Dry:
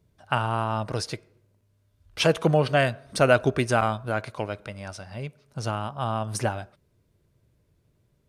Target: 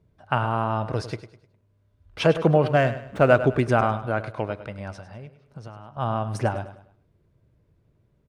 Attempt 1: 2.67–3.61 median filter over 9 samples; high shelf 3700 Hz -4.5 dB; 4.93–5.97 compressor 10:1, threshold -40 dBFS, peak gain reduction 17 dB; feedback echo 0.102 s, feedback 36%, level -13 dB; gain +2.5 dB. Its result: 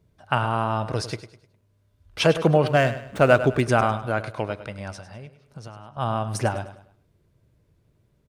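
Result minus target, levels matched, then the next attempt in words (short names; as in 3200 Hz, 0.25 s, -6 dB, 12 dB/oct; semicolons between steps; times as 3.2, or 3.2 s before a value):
8000 Hz band +8.0 dB
2.67–3.61 median filter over 9 samples; high shelf 3700 Hz -15.5 dB; 4.93–5.97 compressor 10:1, threshold -40 dBFS, peak gain reduction 16.5 dB; feedback echo 0.102 s, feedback 36%, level -13 dB; gain +2.5 dB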